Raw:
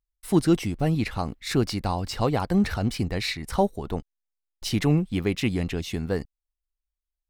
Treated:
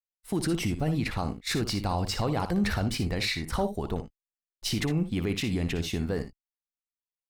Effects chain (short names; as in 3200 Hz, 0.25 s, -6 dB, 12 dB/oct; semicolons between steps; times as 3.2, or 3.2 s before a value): expander -32 dBFS; limiter -20.5 dBFS, peak gain reduction 12 dB; early reflections 59 ms -10.5 dB, 78 ms -17 dB; gain +1.5 dB